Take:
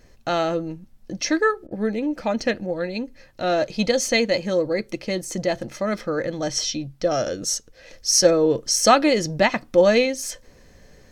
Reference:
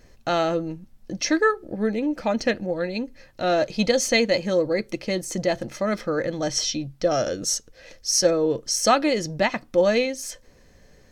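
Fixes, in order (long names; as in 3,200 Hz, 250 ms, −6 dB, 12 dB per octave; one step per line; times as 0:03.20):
repair the gap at 0:01.67, 42 ms
level 0 dB, from 0:07.93 −3.5 dB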